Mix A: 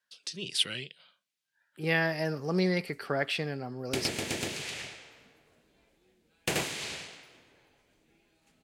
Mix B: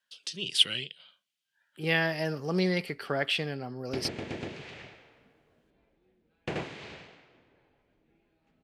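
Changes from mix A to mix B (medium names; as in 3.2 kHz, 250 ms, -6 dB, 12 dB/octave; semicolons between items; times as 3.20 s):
speech: add peaking EQ 3.1 kHz +7.5 dB 0.35 oct; background: add tape spacing loss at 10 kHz 31 dB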